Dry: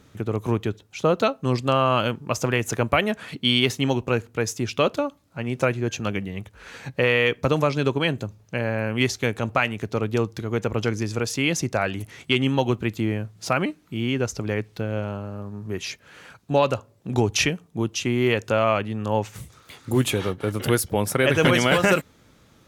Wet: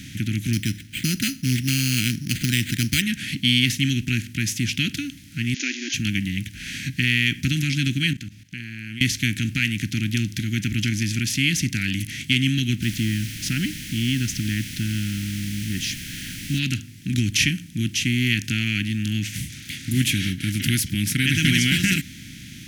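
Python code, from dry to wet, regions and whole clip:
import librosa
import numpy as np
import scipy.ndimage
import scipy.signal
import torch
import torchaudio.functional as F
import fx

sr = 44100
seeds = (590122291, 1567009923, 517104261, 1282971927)

y = fx.chain(x, sr, fx.lowpass(hz=3500.0, slope=6),
    fx.resample_bad(factor=8, down='none', up='hold'), at=(0.53, 3.02))
y = fx.chain(y, sr, fx.crossing_spikes(level_db=-24.5),
    fx.brickwall_bandpass(low_hz=250.0, high_hz=7100.0),
    fx.peak_eq(hz=1300.0, db=-6.0, octaves=0.56), at=(5.54, 5.94))
y = fx.chain(y, sr, fx.lowpass(hz=3400.0, slope=6),
    fx.low_shelf(hz=410.0, db=-8.5),
    fx.level_steps(step_db=21), at=(8.13, 9.01))
y = fx.peak_eq(y, sr, hz=2300.0, db=-12.0, octaves=0.34, at=(12.81, 16.58), fade=0.02)
y = fx.dmg_noise_colour(y, sr, seeds[0], colour='pink', level_db=-46.0, at=(12.81, 16.58), fade=0.02)
y = fx.bin_compress(y, sr, power=0.6)
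y = scipy.signal.sosfilt(scipy.signal.cheby2(4, 40, [430.0, 1200.0], 'bandstop', fs=sr, output='sos'), y)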